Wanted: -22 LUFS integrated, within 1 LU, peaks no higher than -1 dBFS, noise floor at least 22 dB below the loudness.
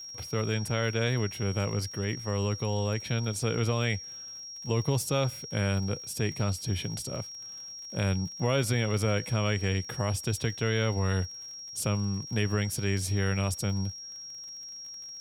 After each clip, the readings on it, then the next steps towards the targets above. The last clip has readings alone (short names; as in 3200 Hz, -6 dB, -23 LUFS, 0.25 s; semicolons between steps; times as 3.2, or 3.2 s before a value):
ticks 49/s; steady tone 5600 Hz; tone level -40 dBFS; loudness -30.5 LUFS; peak -13.0 dBFS; loudness target -22.0 LUFS
-> de-click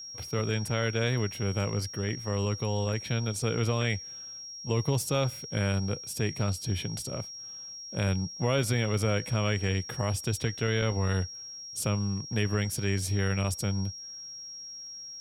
ticks 0.33/s; steady tone 5600 Hz; tone level -40 dBFS
-> notch 5600 Hz, Q 30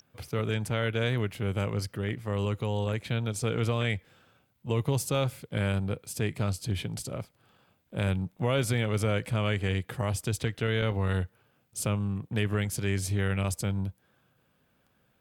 steady tone none; loudness -30.5 LUFS; peak -13.0 dBFS; loudness target -22.0 LUFS
-> gain +8.5 dB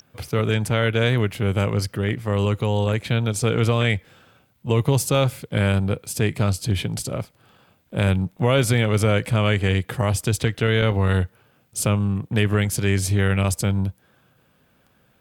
loudness -22.0 LUFS; peak -4.5 dBFS; noise floor -62 dBFS